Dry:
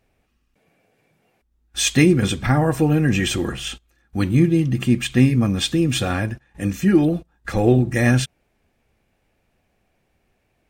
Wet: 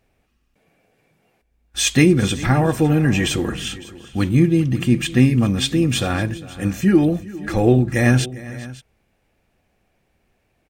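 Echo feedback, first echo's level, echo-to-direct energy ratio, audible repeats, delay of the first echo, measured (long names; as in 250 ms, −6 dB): repeats not evenly spaced, −18.5 dB, −15.5 dB, 2, 402 ms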